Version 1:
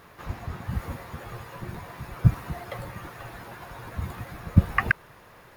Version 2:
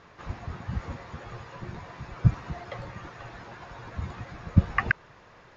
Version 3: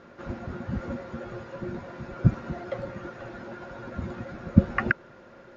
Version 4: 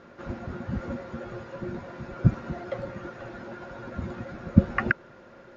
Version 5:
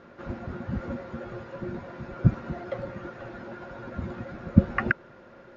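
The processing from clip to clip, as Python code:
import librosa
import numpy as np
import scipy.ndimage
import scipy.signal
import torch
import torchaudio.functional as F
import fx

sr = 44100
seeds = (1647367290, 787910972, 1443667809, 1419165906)

y1 = scipy.signal.sosfilt(scipy.signal.butter(12, 6900.0, 'lowpass', fs=sr, output='sos'), x)
y1 = F.gain(torch.from_numpy(y1), -2.0).numpy()
y2 = fx.small_body(y1, sr, hz=(240.0, 350.0, 530.0, 1400.0), ring_ms=50, db=15)
y2 = F.gain(torch.from_numpy(y2), -3.5).numpy()
y3 = y2
y4 = fx.air_absorb(y3, sr, metres=67.0)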